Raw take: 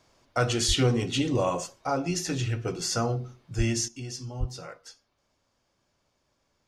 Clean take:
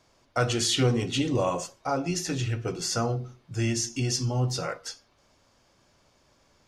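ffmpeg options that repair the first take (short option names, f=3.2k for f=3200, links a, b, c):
-filter_complex "[0:a]asplit=3[a][b][c];[a]afade=t=out:st=0.67:d=0.02[d];[b]highpass=f=140:w=0.5412,highpass=f=140:w=1.3066,afade=t=in:st=0.67:d=0.02,afade=t=out:st=0.79:d=0.02[e];[c]afade=t=in:st=0.79:d=0.02[f];[d][e][f]amix=inputs=3:normalize=0,asplit=3[g][h][i];[g]afade=t=out:st=3.57:d=0.02[j];[h]highpass=f=140:w=0.5412,highpass=f=140:w=1.3066,afade=t=in:st=3.57:d=0.02,afade=t=out:st=3.69:d=0.02[k];[i]afade=t=in:st=3.69:d=0.02[l];[j][k][l]amix=inputs=3:normalize=0,asplit=3[m][n][o];[m]afade=t=out:st=4.39:d=0.02[p];[n]highpass=f=140:w=0.5412,highpass=f=140:w=1.3066,afade=t=in:st=4.39:d=0.02,afade=t=out:st=4.51:d=0.02[q];[o]afade=t=in:st=4.51:d=0.02[r];[p][q][r]amix=inputs=3:normalize=0,asetnsamples=n=441:p=0,asendcmd='3.88 volume volume 10dB',volume=0dB"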